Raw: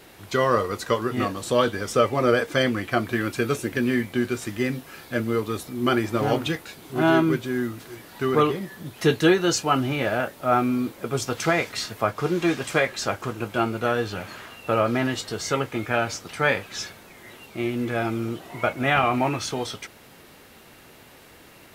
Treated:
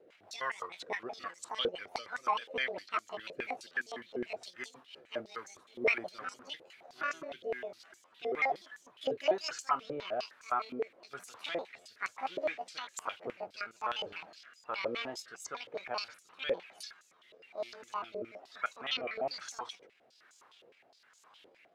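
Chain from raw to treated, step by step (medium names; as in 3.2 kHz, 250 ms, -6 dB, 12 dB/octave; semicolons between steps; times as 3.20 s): pitch shift switched off and on +10 st, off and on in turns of 99 ms; rotary cabinet horn 6 Hz, later 1.1 Hz, at 4.86 s; step-sequenced band-pass 9.7 Hz 500–6800 Hz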